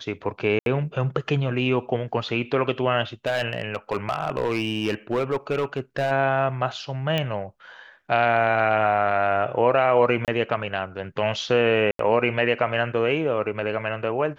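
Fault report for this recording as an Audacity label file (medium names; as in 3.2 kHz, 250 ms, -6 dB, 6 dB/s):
0.590000	0.660000	dropout 72 ms
3.260000	6.120000	clipped -18 dBFS
7.180000	7.180000	pop -12 dBFS
10.250000	10.280000	dropout 28 ms
11.910000	11.990000	dropout 83 ms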